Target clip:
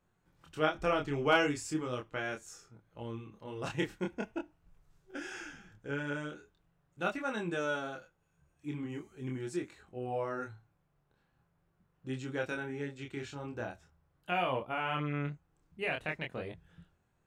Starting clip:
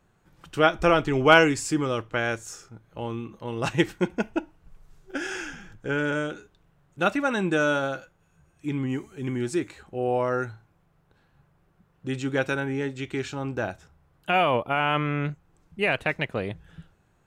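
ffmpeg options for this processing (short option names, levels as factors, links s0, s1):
-af "flanger=delay=22.5:depth=5.9:speed=0.42,volume=0.422"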